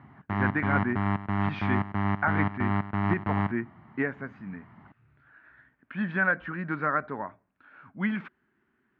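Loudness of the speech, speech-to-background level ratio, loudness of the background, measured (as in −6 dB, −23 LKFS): −31.5 LKFS, −2.0 dB, −29.5 LKFS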